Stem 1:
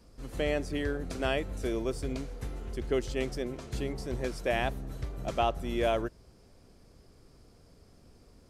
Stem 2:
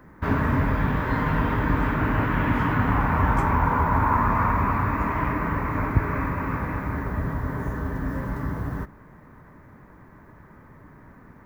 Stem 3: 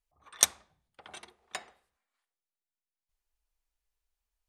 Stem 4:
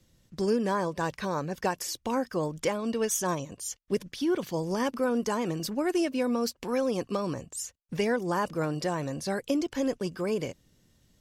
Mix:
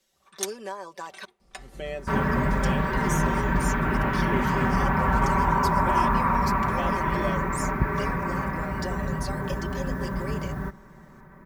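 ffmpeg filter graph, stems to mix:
ffmpeg -i stem1.wav -i stem2.wav -i stem3.wav -i stem4.wav -filter_complex "[0:a]adelay=1400,volume=-6.5dB[link_01];[1:a]adelay=1850,volume=-2dB[link_02];[2:a]alimiter=limit=-8.5dB:level=0:latency=1:release=430,volume=-4.5dB[link_03];[3:a]highpass=510,acompressor=threshold=-32dB:ratio=6,volume=-2.5dB,asplit=3[link_04][link_05][link_06];[link_04]atrim=end=1.25,asetpts=PTS-STARTPTS,afade=type=out:start_time=1.246:duration=0.004:curve=hsin[link_07];[link_05]atrim=start=1.25:end=2.08,asetpts=PTS-STARTPTS,volume=0[link_08];[link_06]atrim=start=2.08,asetpts=PTS-STARTPTS,afade=type=in:duration=0.004:curve=hsin[link_09];[link_07][link_08][link_09]concat=n=3:v=0:a=1[link_10];[link_01][link_02][link_03][link_10]amix=inputs=4:normalize=0,aecho=1:1:5.2:0.69" out.wav

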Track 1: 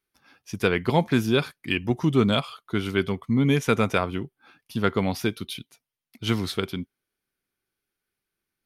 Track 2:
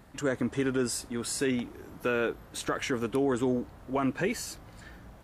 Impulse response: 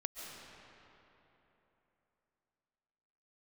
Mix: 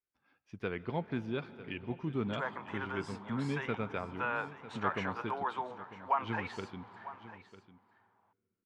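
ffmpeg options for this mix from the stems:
-filter_complex "[0:a]volume=-16dB,asplit=3[link_01][link_02][link_03];[link_02]volume=-11dB[link_04];[link_03]volume=-13.5dB[link_05];[1:a]highpass=frequency=910:width_type=q:width=4.9,adelay=2150,volume=-5.5dB,asplit=2[link_06][link_07];[link_07]volume=-16dB[link_08];[2:a]atrim=start_sample=2205[link_09];[link_04][link_09]afir=irnorm=-1:irlink=0[link_10];[link_05][link_08]amix=inputs=2:normalize=0,aecho=0:1:949:1[link_11];[link_01][link_06][link_10][link_11]amix=inputs=4:normalize=0,lowpass=2600"

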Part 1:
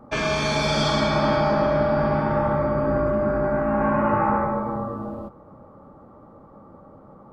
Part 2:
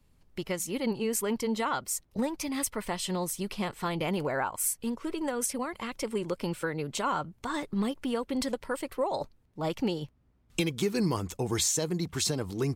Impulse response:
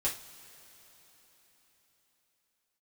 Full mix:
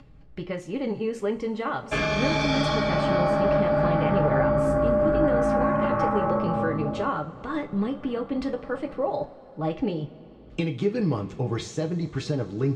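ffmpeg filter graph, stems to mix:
-filter_complex "[0:a]alimiter=limit=-16.5dB:level=0:latency=1:release=343,adelay=1800,volume=-0.5dB,asplit=2[link_01][link_02];[link_02]volume=-12dB[link_03];[1:a]lowpass=frequency=1400:poles=1,acompressor=mode=upward:threshold=-43dB:ratio=2.5,volume=-0.5dB,asplit=2[link_04][link_05];[link_05]volume=-5dB[link_06];[2:a]atrim=start_sample=2205[link_07];[link_03][link_06]amix=inputs=2:normalize=0[link_08];[link_08][link_07]afir=irnorm=-1:irlink=0[link_09];[link_01][link_04][link_09]amix=inputs=3:normalize=0,lowpass=5400,bandreject=frequency=940:width=8.6"

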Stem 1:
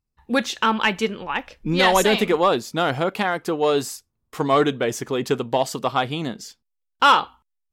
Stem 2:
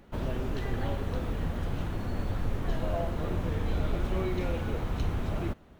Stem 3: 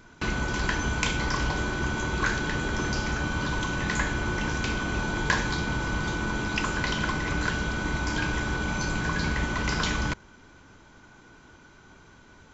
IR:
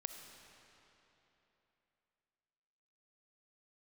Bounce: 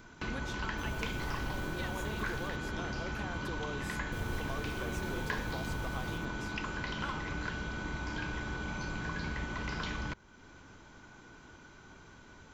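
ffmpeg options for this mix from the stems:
-filter_complex "[0:a]acompressor=threshold=-23dB:ratio=6,volume=-9dB,asplit=2[link_01][link_02];[1:a]bass=frequency=250:gain=0,treble=frequency=4000:gain=15,aeval=exprs='sgn(val(0))*max(abs(val(0))-0.00355,0)':channel_layout=same,adelay=650,volume=1dB,asplit=3[link_03][link_04][link_05];[link_03]atrim=end=2.49,asetpts=PTS-STARTPTS,afade=type=out:start_time=2.486:duration=0.004:curve=hsin[link_06];[link_04]atrim=start=2.49:end=4.12,asetpts=PTS-STARTPTS,volume=0[link_07];[link_05]atrim=start=4.12,asetpts=PTS-STARTPTS,afade=type=in:duration=0.004:curve=hsin[link_08];[link_06][link_07][link_08]concat=n=3:v=0:a=1,asplit=2[link_09][link_10];[link_10]volume=-10.5dB[link_11];[2:a]acrossover=split=5000[link_12][link_13];[link_13]acompressor=threshold=-51dB:ratio=4:attack=1:release=60[link_14];[link_12][link_14]amix=inputs=2:normalize=0,volume=-1.5dB[link_15];[link_02]apad=whole_len=284011[link_16];[link_09][link_16]sidechaincompress=threshold=-35dB:ratio=8:attack=40:release=1460[link_17];[link_11]aecho=0:1:74:1[link_18];[link_01][link_17][link_15][link_18]amix=inputs=4:normalize=0,acompressor=threshold=-49dB:ratio=1.5"

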